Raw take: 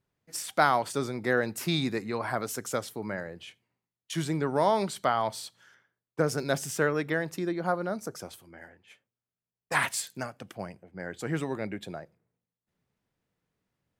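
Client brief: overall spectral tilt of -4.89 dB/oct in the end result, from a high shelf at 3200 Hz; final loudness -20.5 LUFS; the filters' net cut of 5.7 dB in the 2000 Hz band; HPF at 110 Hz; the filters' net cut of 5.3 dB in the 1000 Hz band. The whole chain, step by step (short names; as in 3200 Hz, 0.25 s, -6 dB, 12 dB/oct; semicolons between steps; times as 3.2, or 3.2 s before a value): HPF 110 Hz; bell 1000 Hz -6 dB; bell 2000 Hz -4 dB; high shelf 3200 Hz -3.5 dB; gain +12.5 dB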